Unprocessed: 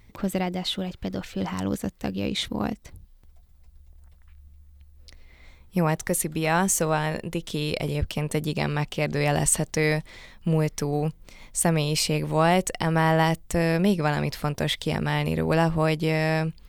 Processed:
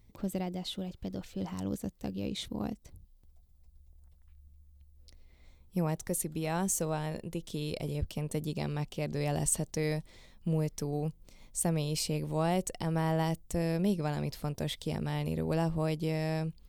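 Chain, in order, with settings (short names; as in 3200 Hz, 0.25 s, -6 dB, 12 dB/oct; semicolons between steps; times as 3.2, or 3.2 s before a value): bell 1700 Hz -9 dB 2 oct; gain -7 dB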